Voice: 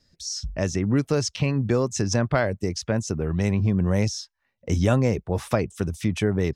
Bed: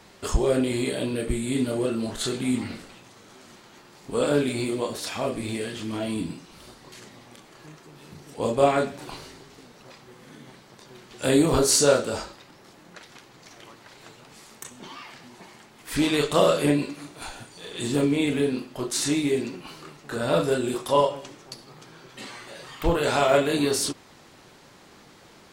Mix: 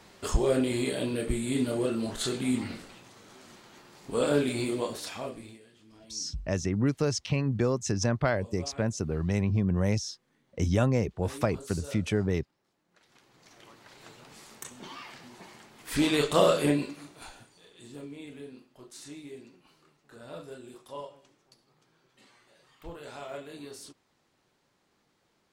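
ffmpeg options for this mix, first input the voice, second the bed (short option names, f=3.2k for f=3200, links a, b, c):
-filter_complex "[0:a]adelay=5900,volume=-4.5dB[a];[1:a]volume=20dB,afade=t=out:st=4.79:d=0.81:silence=0.0749894,afade=t=in:st=12.88:d=1.34:silence=0.0707946,afade=t=out:st=16.51:d=1.24:silence=0.125893[b];[a][b]amix=inputs=2:normalize=0"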